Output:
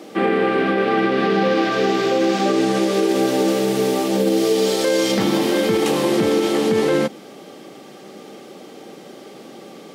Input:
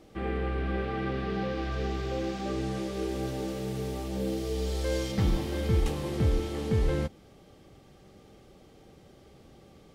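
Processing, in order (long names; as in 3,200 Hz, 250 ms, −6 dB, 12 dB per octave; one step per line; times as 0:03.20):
high-pass filter 210 Hz 24 dB per octave
boost into a limiter +25.5 dB
level −8 dB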